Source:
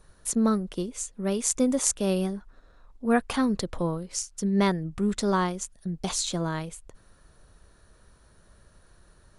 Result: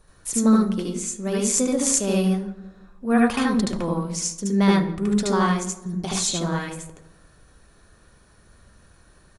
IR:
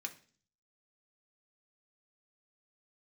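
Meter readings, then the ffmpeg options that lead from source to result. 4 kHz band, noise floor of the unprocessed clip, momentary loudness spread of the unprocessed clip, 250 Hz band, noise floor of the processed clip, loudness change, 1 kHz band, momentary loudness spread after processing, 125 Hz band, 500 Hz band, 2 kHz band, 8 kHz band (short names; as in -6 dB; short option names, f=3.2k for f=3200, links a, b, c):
+4.5 dB, -59 dBFS, 10 LU, +5.5 dB, -55 dBFS, +5.0 dB, +4.0 dB, 10 LU, +5.5 dB, +3.5 dB, +5.5 dB, +5.0 dB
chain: -filter_complex "[0:a]asplit=2[a][b];[b]adelay=170,lowpass=f=1.2k:p=1,volume=-16dB,asplit=2[c][d];[d]adelay=170,lowpass=f=1.2k:p=1,volume=0.44,asplit=2[e][f];[f]adelay=170,lowpass=f=1.2k:p=1,volume=0.44,asplit=2[g][h];[h]adelay=170,lowpass=f=1.2k:p=1,volume=0.44[i];[a][c][e][g][i]amix=inputs=5:normalize=0,asplit=2[j][k];[1:a]atrim=start_sample=2205,lowshelf=f=150:g=8.5,adelay=74[l];[k][l]afir=irnorm=-1:irlink=0,volume=5dB[m];[j][m]amix=inputs=2:normalize=0"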